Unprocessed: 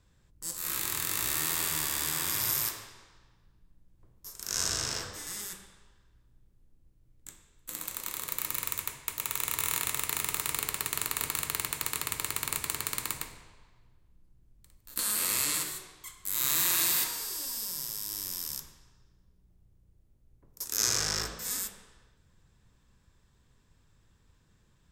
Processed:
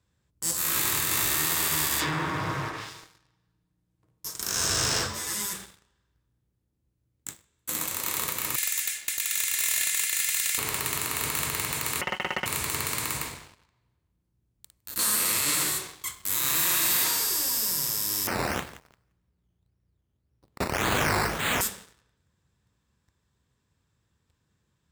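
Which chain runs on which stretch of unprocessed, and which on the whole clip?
1.99–4.41 treble ducked by the level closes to 1400 Hz, closed at -27.5 dBFS + comb 6.4 ms, depth 50%
5.06–5.53 whine 1000 Hz -53 dBFS + ensemble effect
8.56–10.58 Chebyshev high-pass 1700 Hz, order 4 + dynamic EQ 7500 Hz, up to +3 dB, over -46 dBFS, Q 1.4 + comb 2.9 ms, depth 79%
12.01–12.46 expander -33 dBFS + comb 5.5 ms, depth 74% + inverted band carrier 3100 Hz
18.27–21.61 decimation with a swept rate 11×, swing 60% 1.8 Hz + frequency-shifting echo 0.173 s, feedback 33%, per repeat -72 Hz, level -19 dB
whole clip: limiter -18 dBFS; HPF 59 Hz 24 dB/oct; sample leveller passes 3

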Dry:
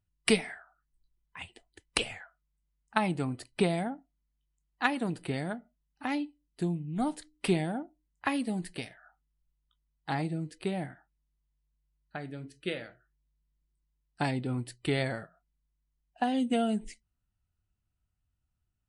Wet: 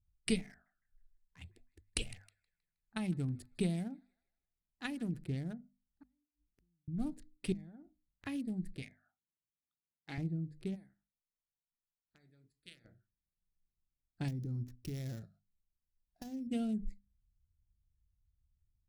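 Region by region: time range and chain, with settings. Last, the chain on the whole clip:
0.5–5.19 high shelf 8500 Hz +9 dB + thin delay 0.158 s, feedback 42%, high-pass 1700 Hz, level -16 dB
6.03–6.88 compressor 2.5:1, threshold -45 dBFS + flipped gate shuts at -47 dBFS, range -35 dB
7.52–8.25 bell 3000 Hz +11 dB 2.6 oct + compressor 16:1, threshold -41 dBFS
8.82–10.18 Bessel high-pass 270 Hz + bell 2200 Hz +14 dB 0.28 oct
10.74–12.84 spectral limiter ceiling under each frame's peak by 13 dB + pre-emphasis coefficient 0.9
14.28–16.47 sample sorter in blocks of 8 samples + compressor 5:1, threshold -31 dBFS
whole clip: Wiener smoothing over 15 samples; passive tone stack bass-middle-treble 10-0-1; notches 50/100/150/200/250 Hz; gain +12.5 dB

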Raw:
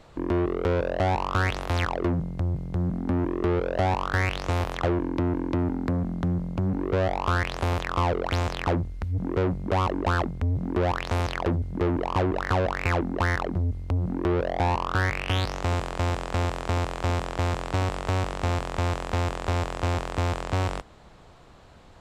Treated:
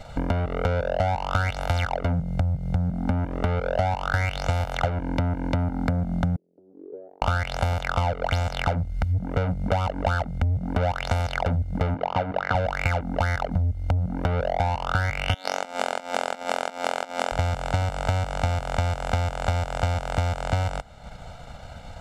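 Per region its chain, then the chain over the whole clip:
6.36–7.22 Butterworth band-pass 370 Hz, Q 5.2 + tilt +1.5 dB/oct
11.94–12.55 HPF 140 Hz + air absorption 140 m
15.34–17.32 negative-ratio compressor -29 dBFS, ratio -0.5 + brick-wall FIR high-pass 200 Hz
whole clip: comb 1.4 ms, depth 96%; transient shaper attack +2 dB, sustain -6 dB; compressor 4:1, threshold -29 dBFS; gain +7 dB

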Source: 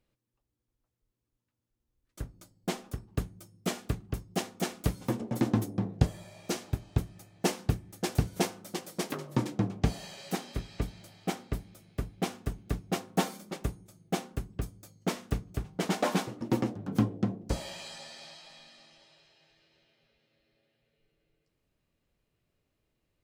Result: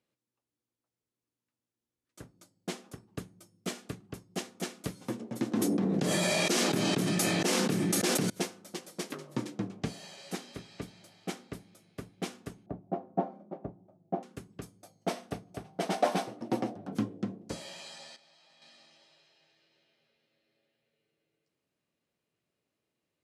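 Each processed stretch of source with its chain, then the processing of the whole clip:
5.52–8.3 HPF 160 Hz 24 dB/oct + fast leveller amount 100%
12.66–14.23 synth low-pass 700 Hz, resonance Q 3.3 + notch 470 Hz, Q 5.2
14.82–16.95 bell 710 Hz +14 dB 0.6 oct + notch 7000 Hz, Q 8.3
18.16–18.62 level quantiser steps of 20 dB + high shelf 7100 Hz -7 dB
whole clip: HPF 170 Hz 12 dB/oct; dynamic EQ 820 Hz, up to -5 dB, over -46 dBFS, Q 1.5; elliptic low-pass 12000 Hz, stop band 60 dB; gain -2 dB

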